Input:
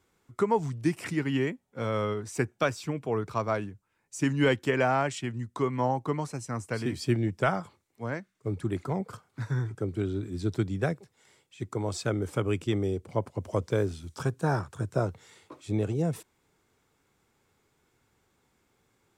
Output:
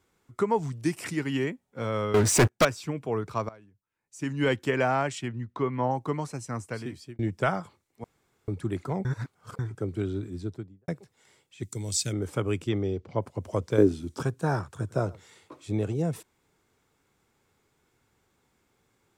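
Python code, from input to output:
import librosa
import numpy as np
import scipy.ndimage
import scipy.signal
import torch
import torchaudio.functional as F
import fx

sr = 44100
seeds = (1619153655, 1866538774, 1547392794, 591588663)

y = fx.bass_treble(x, sr, bass_db=-2, treble_db=5, at=(0.72, 1.44))
y = fx.leveller(y, sr, passes=5, at=(2.14, 2.65))
y = fx.lowpass(y, sr, hz=3400.0, slope=12, at=(5.28, 5.91))
y = fx.studio_fade_out(y, sr, start_s=10.14, length_s=0.74)
y = fx.curve_eq(y, sr, hz=(160.0, 790.0, 1200.0, 2000.0, 6900.0), db=(0, -14, -16, -1, 12), at=(11.63, 12.13))
y = fx.lowpass(y, sr, hz=5600.0, slope=24, at=(12.68, 13.2), fade=0.02)
y = fx.peak_eq(y, sr, hz=300.0, db=14.0, octaves=1.3, at=(13.78, 14.23))
y = fx.echo_single(y, sr, ms=103, db=-23.0, at=(14.73, 15.67))
y = fx.edit(y, sr, fx.fade_in_from(start_s=3.49, length_s=1.07, curve='qua', floor_db=-21.5),
    fx.fade_out_span(start_s=6.57, length_s=0.62),
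    fx.room_tone_fill(start_s=8.04, length_s=0.44),
    fx.reverse_span(start_s=9.05, length_s=0.54), tone=tone)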